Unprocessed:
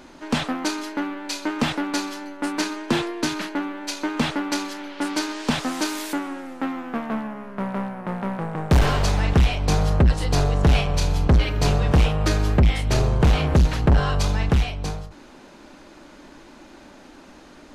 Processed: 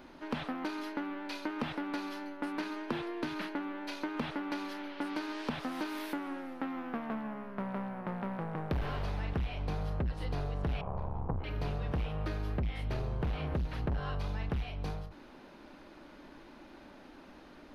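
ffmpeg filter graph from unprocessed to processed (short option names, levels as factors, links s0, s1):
-filter_complex "[0:a]asettb=1/sr,asplit=3[s0][s1][s2];[s0]atrim=end=10.814[s3];[s1]atrim=start=10.81:end=11.44,asetpts=PTS-STARTPTS,afade=t=in:d=0.004:c=qsin,afade=t=out:st=0.626:d=0.004:c=qsin,aeval=exprs='val(0)*sin(2*PI*34*n/s)':c=same,lowpass=f=970:t=q:w=2.8[s4];[s2]atrim=start=11.436[s5];[s3][s4]acrossfade=d=0.004:c1=hsin:c2=qsin[s6];[s6][s5]acrossfade=d=0.004:c1=qsin:c2=hsin,acrossover=split=3500[s7][s8];[s8]acompressor=threshold=0.0141:ratio=4:attack=1:release=60[s9];[s7][s9]amix=inputs=2:normalize=0,equalizer=f=7400:w=1.6:g=-14,acompressor=threshold=0.0562:ratio=6,volume=0.447"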